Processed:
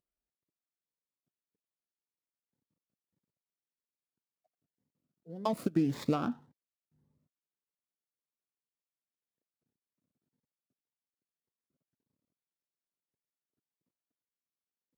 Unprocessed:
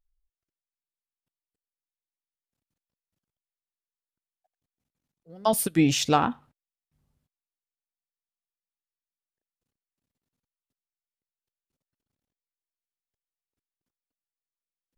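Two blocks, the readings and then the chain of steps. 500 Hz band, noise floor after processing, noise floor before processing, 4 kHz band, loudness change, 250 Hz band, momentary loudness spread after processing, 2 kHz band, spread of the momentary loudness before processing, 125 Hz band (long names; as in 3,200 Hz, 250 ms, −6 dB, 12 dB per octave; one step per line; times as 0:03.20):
−8.0 dB, below −85 dBFS, below −85 dBFS, −18.0 dB, −9.0 dB, −6.0 dB, 13 LU, −15.0 dB, 7 LU, −7.0 dB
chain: running median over 15 samples
high-pass filter 150 Hz 12 dB per octave
tilt shelving filter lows +3.5 dB, about 710 Hz
notch filter 790 Hz, Q 12
downward compressor 10 to 1, threshold −26 dBFS, peak gain reduction 12 dB
phaser whose notches keep moving one way rising 1.8 Hz
level +1.5 dB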